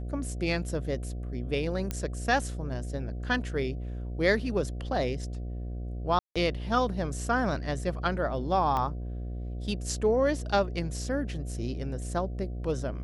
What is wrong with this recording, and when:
mains buzz 60 Hz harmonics 12 −35 dBFS
0:01.91: click −16 dBFS
0:06.19–0:06.36: drop-out 166 ms
0:08.77: click −18 dBFS

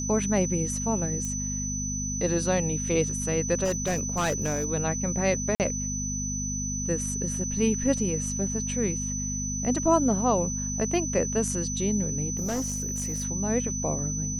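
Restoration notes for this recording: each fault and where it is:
mains hum 50 Hz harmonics 5 −33 dBFS
whistle 6,000 Hz −31 dBFS
0:01.25: click −20 dBFS
0:03.64–0:04.66: clipping −22 dBFS
0:05.55–0:05.60: drop-out 48 ms
0:12.36–0:13.24: clipping −25 dBFS

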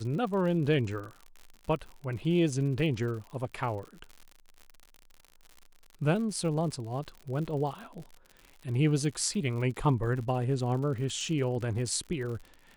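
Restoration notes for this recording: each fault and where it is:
surface crackle 83 per second −39 dBFS

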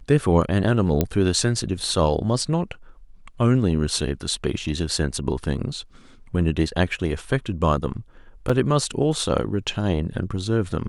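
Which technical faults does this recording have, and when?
0:01.01: click −6 dBFS
0:08.49: drop-out 4.9 ms

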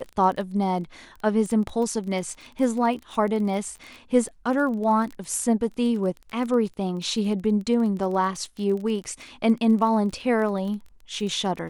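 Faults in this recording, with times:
surface crackle 20 per second −31 dBFS

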